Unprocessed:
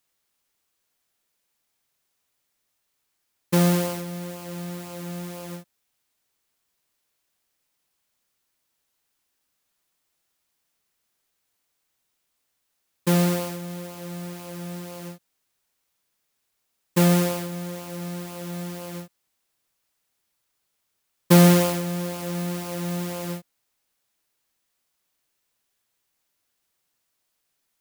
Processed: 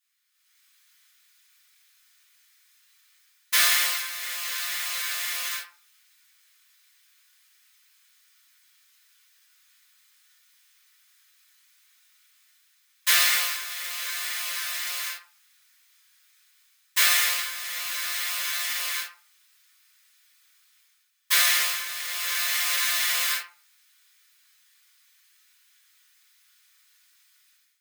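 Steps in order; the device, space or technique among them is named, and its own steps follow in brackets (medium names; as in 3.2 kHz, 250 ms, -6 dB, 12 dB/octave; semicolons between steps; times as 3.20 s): high-pass 1.4 kHz 24 dB/octave; far laptop microphone (reverberation RT60 0.40 s, pre-delay 3 ms, DRR -7 dB; high-pass 150 Hz; level rider gain up to 15 dB); trim -6 dB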